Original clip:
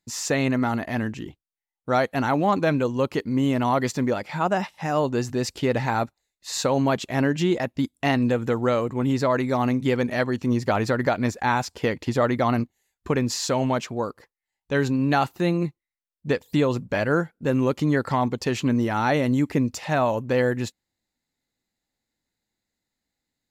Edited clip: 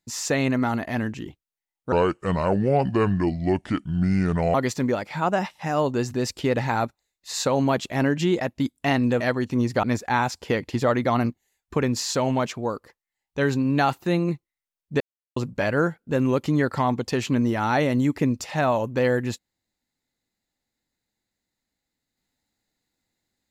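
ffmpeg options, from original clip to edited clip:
-filter_complex "[0:a]asplit=7[s0][s1][s2][s3][s4][s5][s6];[s0]atrim=end=1.924[s7];[s1]atrim=start=1.92:end=3.73,asetpts=PTS-STARTPTS,asetrate=30429,aresample=44100[s8];[s2]atrim=start=3.726:end=8.392[s9];[s3]atrim=start=10.118:end=10.752[s10];[s4]atrim=start=11.168:end=16.34,asetpts=PTS-STARTPTS,afade=t=out:st=5.168:d=0.004:c=hsin[s11];[s5]atrim=start=16.34:end=16.7,asetpts=PTS-STARTPTS,volume=0[s12];[s6]atrim=start=16.7,asetpts=PTS-STARTPTS,afade=t=in:d=0.004:c=hsin[s13];[s7][s8]acrossfade=d=0.004:c1=hsin:c2=hsin[s14];[s14][s9]acrossfade=d=0.004:c1=hsin:c2=hsin[s15];[s15][s10]acrossfade=d=0.004:c1=hsin:c2=hsin[s16];[s11][s12][s13]concat=n=3:v=0:a=1[s17];[s16][s17]acrossfade=d=0.004:c1=hsin:c2=hsin"

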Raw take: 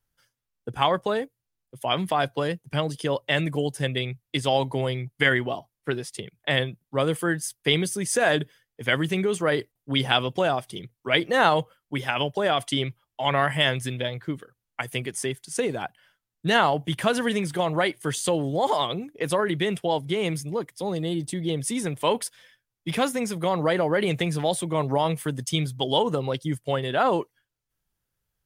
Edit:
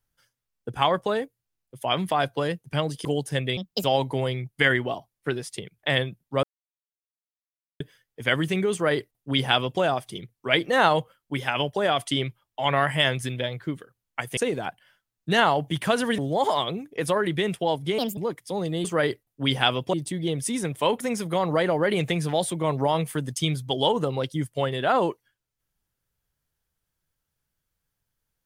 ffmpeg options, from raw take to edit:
-filter_complex "[0:a]asplit=13[s0][s1][s2][s3][s4][s5][s6][s7][s8][s9][s10][s11][s12];[s0]atrim=end=3.052[s13];[s1]atrim=start=3.528:end=4.054[s14];[s2]atrim=start=4.05:end=4.45,asetpts=PTS-STARTPTS,asetrate=64827,aresample=44100[s15];[s3]atrim=start=4.446:end=7.04,asetpts=PTS-STARTPTS,afade=t=out:st=2.59:d=0.004:c=hsin[s16];[s4]atrim=start=7.04:end=8.41,asetpts=PTS-STARTPTS,volume=0[s17];[s5]atrim=start=8.41:end=14.982,asetpts=PTS-STARTPTS,afade=t=in:d=0.004:c=hsin[s18];[s6]atrim=start=15.538:end=17.352[s19];[s7]atrim=start=18.408:end=20.214[s20];[s8]atrim=start=20.21:end=20.48,asetpts=PTS-STARTPTS,asetrate=62181,aresample=44100[s21];[s9]atrim=start=20.476:end=21.152[s22];[s10]atrim=start=9.328:end=10.422[s23];[s11]atrim=start=21.148:end=22.222[s24];[s12]atrim=start=23.108[s25];[s13][s14]acrossfade=d=0.004:c1=hsin:c2=hsin[s26];[s26][s15]acrossfade=d=0.004:c1=hsin:c2=hsin[s27];[s16][s17][s18]concat=n=3:v=0:a=1[s28];[s27][s28]acrossfade=d=0.004:c1=hsin:c2=hsin[s29];[s29][s19]acrossfade=d=0.004:c1=hsin:c2=hsin[s30];[s30][s20]acrossfade=d=0.004:c1=hsin:c2=hsin[s31];[s31][s21]acrossfade=d=0.004:c1=hsin:c2=hsin[s32];[s32][s22]acrossfade=d=0.004:c1=hsin:c2=hsin[s33];[s33][s23]acrossfade=d=0.004:c1=hsin:c2=hsin[s34];[s34][s24]acrossfade=d=0.004:c1=hsin:c2=hsin[s35];[s35][s25]acrossfade=d=0.004:c1=hsin:c2=hsin"

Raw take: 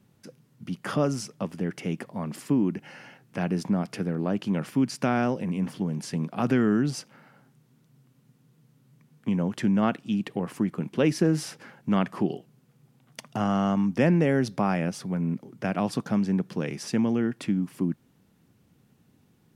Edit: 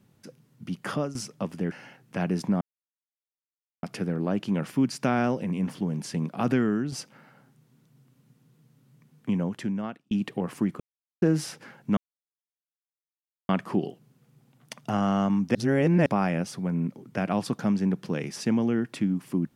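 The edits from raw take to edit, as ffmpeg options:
-filter_complex "[0:a]asplit=11[s0][s1][s2][s3][s4][s5][s6][s7][s8][s9][s10];[s0]atrim=end=1.15,asetpts=PTS-STARTPTS,afade=t=out:st=0.88:d=0.27:silence=0.177828[s11];[s1]atrim=start=1.15:end=1.722,asetpts=PTS-STARTPTS,afade=t=in:d=0.004:c=hsin:silence=0.177828[s12];[s2]atrim=start=2.928:end=3.82,asetpts=PTS-STARTPTS,afade=t=out:st=0.888:d=0.004:c=hsin,apad=pad_dur=1.22[s13];[s3]atrim=start=3.82:end=6.91,asetpts=PTS-STARTPTS,afade=t=in:d=0.004:c=hsin,afade=t=out:st=2.65:d=0.44:silence=0.446684[s14];[s4]atrim=start=6.91:end=10.1,asetpts=PTS-STARTPTS,afade=t=in:d=0.004:c=hsin:silence=0.446684,afade=t=out:st=2.37:d=0.82[s15];[s5]atrim=start=10.1:end=10.79,asetpts=PTS-STARTPTS,afade=t=in:d=0.004:c=hsin,afade=t=out:st=0.686:d=0.004:c=hsin[s16];[s6]atrim=start=10.79:end=11.21,asetpts=PTS-STARTPTS,volume=0[s17];[s7]atrim=start=11.21:end=11.96,asetpts=PTS-STARTPTS,afade=t=in:d=0.004:c=hsin,afade=t=out:st=0.746:d=0.004:c=hsin,apad=pad_dur=1.52[s18];[s8]atrim=start=11.96:end=14.022,asetpts=PTS-STARTPTS,afade=t=in:d=0.004:c=hsin[s19];[s9]atrim=start=14.018:end=14.532,asetpts=PTS-STARTPTS,areverse[s20];[s10]atrim=start=14.528[s21];[s11][s12]concat=n=2:v=0:a=1[s22];[s13][s14][s15][s16][s17][s18][s19]concat=n=7:v=0:a=1[s23];[s22][s23]acrossfade=d=0.004:c1=hsin:c2=hsin[s24];[s24][s20]acrossfade=d=0.004:c1=hsin:c2=hsin[s25];[s25][s21]acrossfade=d=0.004:c1=hsin:c2=hsin"

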